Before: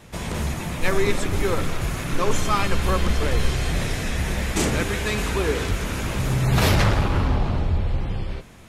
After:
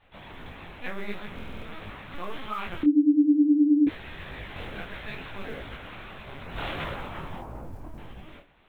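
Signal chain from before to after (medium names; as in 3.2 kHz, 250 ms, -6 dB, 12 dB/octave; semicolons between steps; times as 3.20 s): bass shelf 240 Hz -9.5 dB; 6.04–6.54 s: high-pass 160 Hz 12 dB/octave; peaking EQ 310 Hz -13 dB 0.22 oct; LPC vocoder at 8 kHz pitch kept; 7.40–7.98 s: low-pass 1.2 kHz 12 dB/octave; modulation noise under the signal 30 dB; 2.83–3.87 s: bleep 295 Hz -7 dBFS; buffer glitch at 1.34 s, samples 2048, times 5; detune thickener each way 55 cents; trim -6.5 dB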